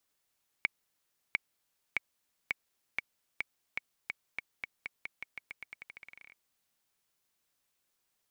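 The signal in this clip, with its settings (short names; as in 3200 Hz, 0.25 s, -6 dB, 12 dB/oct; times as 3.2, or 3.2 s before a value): bouncing ball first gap 0.70 s, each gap 0.88, 2240 Hz, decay 20 ms -13 dBFS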